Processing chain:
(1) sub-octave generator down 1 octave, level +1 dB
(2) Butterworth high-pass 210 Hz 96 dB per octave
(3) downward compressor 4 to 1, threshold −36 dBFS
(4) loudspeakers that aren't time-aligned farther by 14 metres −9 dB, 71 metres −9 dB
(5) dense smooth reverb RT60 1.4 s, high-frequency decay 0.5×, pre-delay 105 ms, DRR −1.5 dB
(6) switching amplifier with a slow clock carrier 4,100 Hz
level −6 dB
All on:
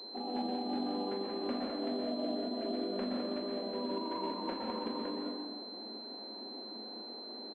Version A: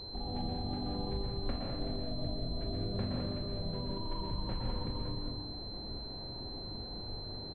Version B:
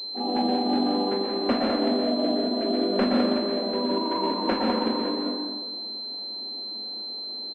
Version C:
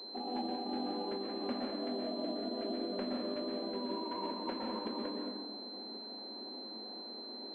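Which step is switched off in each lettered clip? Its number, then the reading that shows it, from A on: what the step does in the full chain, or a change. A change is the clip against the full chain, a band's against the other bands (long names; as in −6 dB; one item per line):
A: 2, 4 kHz band +5.5 dB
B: 3, average gain reduction 8.0 dB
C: 4, change in momentary loudness spread −1 LU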